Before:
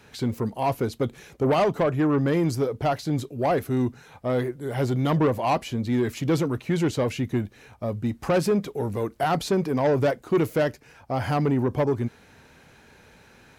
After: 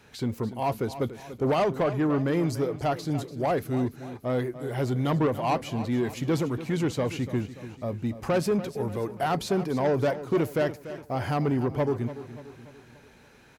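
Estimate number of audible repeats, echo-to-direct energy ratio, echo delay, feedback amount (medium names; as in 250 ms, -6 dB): 4, -12.5 dB, 290 ms, 49%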